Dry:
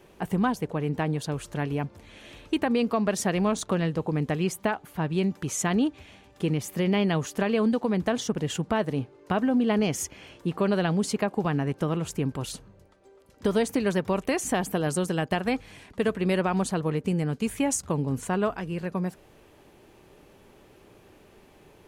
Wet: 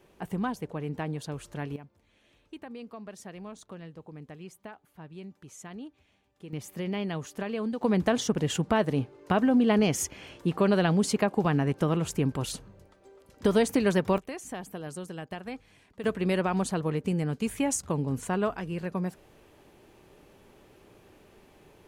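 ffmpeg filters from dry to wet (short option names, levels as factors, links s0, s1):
-af "asetnsamples=n=441:p=0,asendcmd='1.76 volume volume -18dB;6.53 volume volume -8dB;7.81 volume volume 1dB;14.18 volume volume -12dB;16.04 volume volume -2dB',volume=0.501"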